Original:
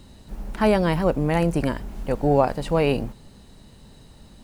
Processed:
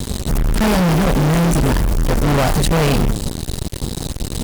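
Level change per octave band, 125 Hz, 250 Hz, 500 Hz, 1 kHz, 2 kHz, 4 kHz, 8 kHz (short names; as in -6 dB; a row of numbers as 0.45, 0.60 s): +10.5, +7.0, +1.5, +4.5, +8.0, +12.5, +20.5 dB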